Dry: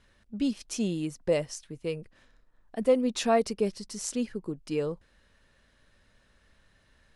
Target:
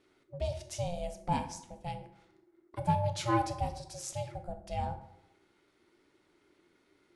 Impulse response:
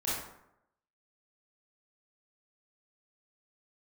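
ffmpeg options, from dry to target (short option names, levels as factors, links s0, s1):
-filter_complex "[0:a]aeval=exprs='val(0)*sin(2*PI*350*n/s)':c=same,flanger=delay=9.8:depth=3.2:regen=74:speed=1.3:shape=triangular,asplit=2[s0][s1];[1:a]atrim=start_sample=2205[s2];[s1][s2]afir=irnorm=-1:irlink=0,volume=0.2[s3];[s0][s3]amix=inputs=2:normalize=0"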